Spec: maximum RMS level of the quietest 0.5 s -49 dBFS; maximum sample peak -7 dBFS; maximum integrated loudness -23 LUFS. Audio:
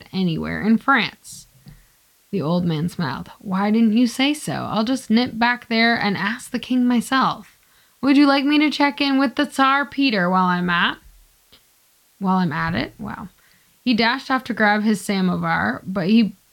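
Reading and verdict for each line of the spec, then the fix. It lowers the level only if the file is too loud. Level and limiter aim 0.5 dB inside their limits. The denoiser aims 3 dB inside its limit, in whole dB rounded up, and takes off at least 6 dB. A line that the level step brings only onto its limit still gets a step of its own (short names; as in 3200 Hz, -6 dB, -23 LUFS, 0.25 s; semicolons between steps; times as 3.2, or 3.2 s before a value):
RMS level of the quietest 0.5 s -58 dBFS: OK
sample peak -5.0 dBFS: fail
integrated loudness -19.5 LUFS: fail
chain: gain -4 dB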